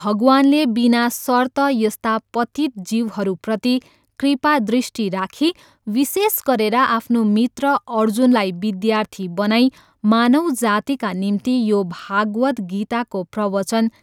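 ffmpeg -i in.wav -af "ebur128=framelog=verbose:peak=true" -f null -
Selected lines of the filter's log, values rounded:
Integrated loudness:
  I:         -18.5 LUFS
  Threshold: -28.5 LUFS
Loudness range:
  LRA:         2.9 LU
  Threshold: -38.7 LUFS
  LRA low:   -20.5 LUFS
  LRA high:  -17.6 LUFS
True peak:
  Peak:       -2.3 dBFS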